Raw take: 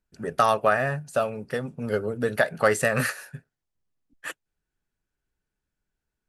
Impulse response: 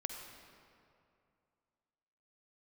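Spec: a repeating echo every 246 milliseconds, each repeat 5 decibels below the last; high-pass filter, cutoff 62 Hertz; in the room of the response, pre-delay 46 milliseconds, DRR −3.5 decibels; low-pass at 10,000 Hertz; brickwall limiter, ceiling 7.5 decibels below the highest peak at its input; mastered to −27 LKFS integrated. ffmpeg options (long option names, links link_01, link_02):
-filter_complex "[0:a]highpass=62,lowpass=10000,alimiter=limit=-14dB:level=0:latency=1,aecho=1:1:246|492|738|984|1230|1476|1722:0.562|0.315|0.176|0.0988|0.0553|0.031|0.0173,asplit=2[link_01][link_02];[1:a]atrim=start_sample=2205,adelay=46[link_03];[link_02][link_03]afir=irnorm=-1:irlink=0,volume=3.5dB[link_04];[link_01][link_04]amix=inputs=2:normalize=0,volume=-4.5dB"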